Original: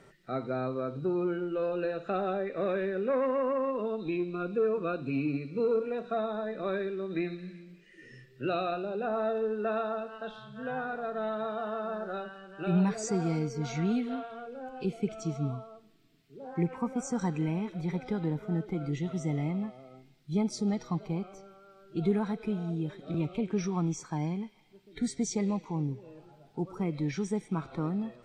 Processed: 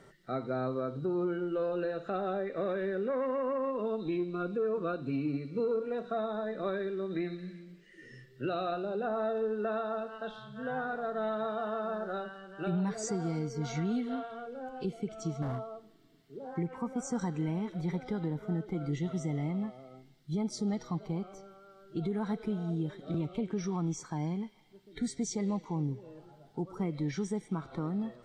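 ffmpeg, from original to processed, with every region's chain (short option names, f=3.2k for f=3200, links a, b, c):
-filter_complex "[0:a]asettb=1/sr,asplit=3[a][b][c];[a]atrim=end=15.424[d];[b]atrim=start=15.42:end=16.39,asetpts=PTS-STARTPTS,afade=t=in:d=0.004:c=qsin,afade=t=out:st=0.966:d=0.004:c=qsin,equalizer=f=600:w=0.52:g=6.5,asoftclip=type=hard:threshold=-31dB[e];[c]atrim=start=16.386[f];[d][e]acrossfade=d=0.004:c1=hsin:c2=qsin[g];[g][f]acrossfade=d=0.004:c1=qsin:c2=hsin,bandreject=f=2.5k:w=6.5,alimiter=level_in=0.5dB:limit=-24dB:level=0:latency=1:release=222,volume=-0.5dB"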